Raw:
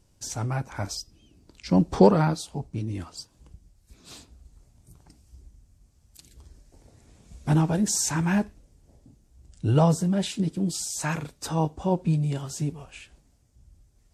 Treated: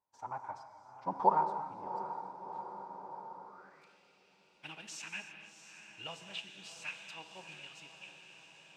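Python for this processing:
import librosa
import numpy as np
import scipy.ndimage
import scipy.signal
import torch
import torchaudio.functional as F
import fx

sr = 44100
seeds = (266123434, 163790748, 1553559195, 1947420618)

p1 = fx.law_mismatch(x, sr, coded='A')
p2 = p1 + fx.echo_diffused(p1, sr, ms=1134, feedback_pct=70, wet_db=-10, dry=0)
p3 = fx.filter_sweep_bandpass(p2, sr, from_hz=940.0, to_hz=2700.0, start_s=5.52, end_s=6.3, q=6.8)
p4 = fx.stretch_vocoder(p3, sr, factor=0.62)
p5 = fx.rev_gated(p4, sr, seeds[0], gate_ms=330, shape='flat', drr_db=7.5)
y = p5 * 10.0 ** (5.0 / 20.0)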